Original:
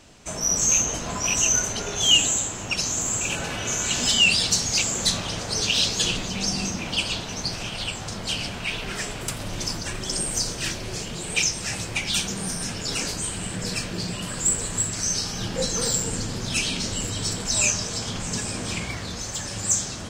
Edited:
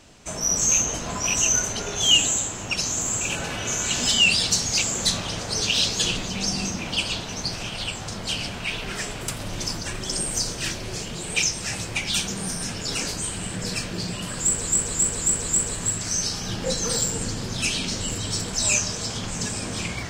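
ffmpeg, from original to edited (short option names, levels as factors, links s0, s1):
-filter_complex "[0:a]asplit=5[s0][s1][s2][s3][s4];[s0]atrim=end=14.672[s5];[s1]atrim=start=14.398:end=14.672[s6];[s2]atrim=start=14.398:end=14.672[s7];[s3]atrim=start=14.398:end=14.672[s8];[s4]atrim=start=14.398[s9];[s5][s6]acrossfade=d=0.004:c1=hsin:c2=hsin[s10];[s10][s7]acrossfade=d=0.004:c1=hsin:c2=hsin[s11];[s11][s8]acrossfade=d=0.004:c1=hsin:c2=hsin[s12];[s12][s9]acrossfade=d=0.004:c1=hsin:c2=hsin"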